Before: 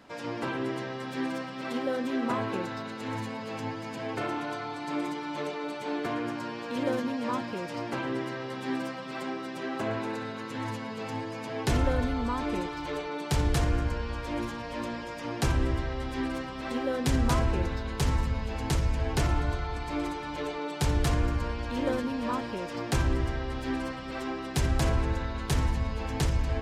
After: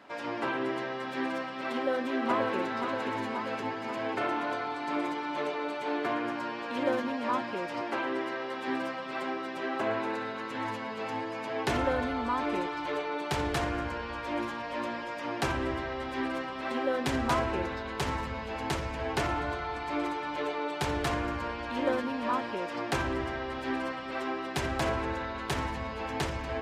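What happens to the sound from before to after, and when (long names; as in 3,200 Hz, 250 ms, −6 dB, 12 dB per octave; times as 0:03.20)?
0:01.72–0:02.56: delay throw 530 ms, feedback 65%, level −5.5 dB
0:07.81–0:08.68: high-pass filter 210 Hz
whole clip: high-pass filter 63 Hz; bass and treble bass −12 dB, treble −9 dB; notch filter 480 Hz, Q 12; level +3 dB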